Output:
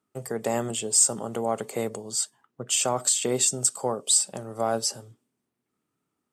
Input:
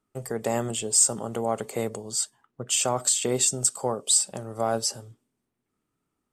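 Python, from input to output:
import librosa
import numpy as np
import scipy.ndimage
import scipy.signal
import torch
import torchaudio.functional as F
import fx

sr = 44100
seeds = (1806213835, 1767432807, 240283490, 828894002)

y = scipy.signal.sosfilt(scipy.signal.butter(2, 110.0, 'highpass', fs=sr, output='sos'), x)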